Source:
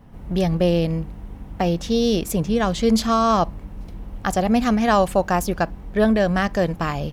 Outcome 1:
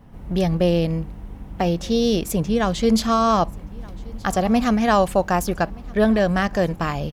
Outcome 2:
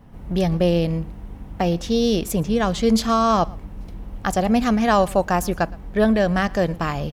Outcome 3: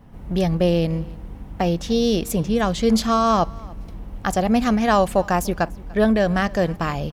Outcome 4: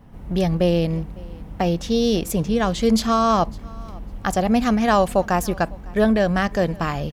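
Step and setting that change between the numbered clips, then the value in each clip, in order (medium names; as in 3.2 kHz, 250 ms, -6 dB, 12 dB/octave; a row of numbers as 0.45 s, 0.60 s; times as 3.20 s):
feedback delay, time: 1224 ms, 116 ms, 293 ms, 554 ms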